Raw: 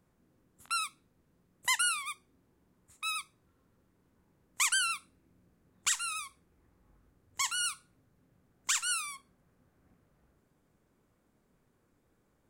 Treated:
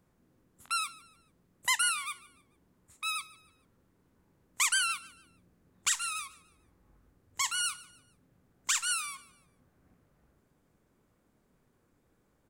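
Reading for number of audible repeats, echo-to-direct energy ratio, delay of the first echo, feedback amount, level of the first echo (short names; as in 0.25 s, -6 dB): 2, -19.5 dB, 0.147 s, 36%, -20.0 dB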